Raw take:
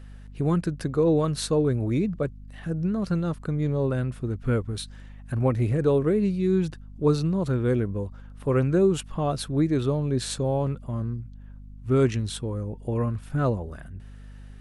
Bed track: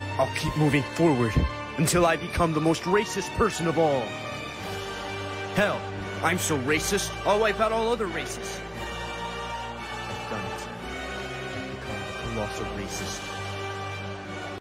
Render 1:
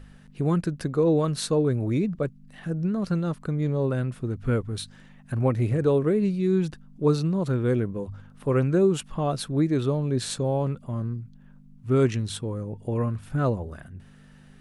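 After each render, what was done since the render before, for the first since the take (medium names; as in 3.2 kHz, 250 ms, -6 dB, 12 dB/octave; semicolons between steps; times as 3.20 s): de-hum 50 Hz, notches 2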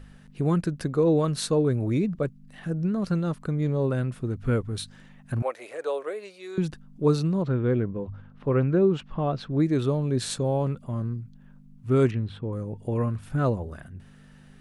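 5.42–6.58 s: Chebyshev high-pass 560 Hz, order 3; 7.42–9.60 s: distance through air 220 m; 12.11–12.53 s: distance through air 450 m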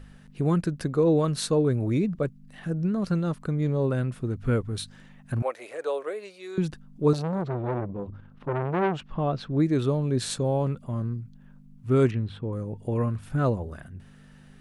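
7.13–9.09 s: transformer saturation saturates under 930 Hz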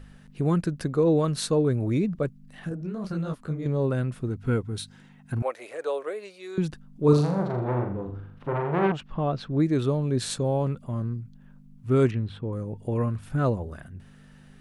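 2.69–3.66 s: detune thickener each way 57 cents; 4.29–5.42 s: comb of notches 590 Hz; 7.04–8.92 s: flutter echo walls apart 7 m, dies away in 0.53 s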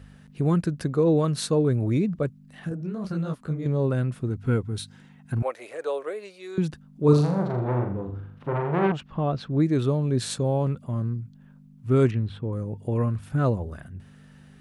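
high-pass 66 Hz; bass shelf 110 Hz +6 dB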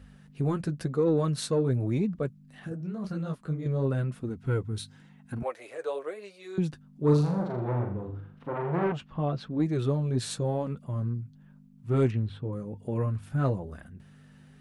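saturation -11 dBFS, distortion -23 dB; flange 0.94 Hz, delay 3.5 ms, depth 5.5 ms, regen -40%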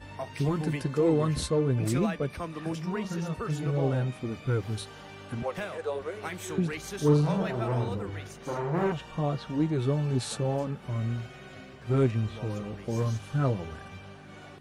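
add bed track -13 dB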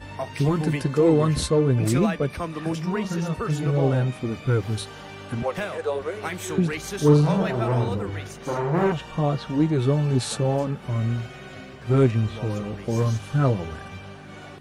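trim +6 dB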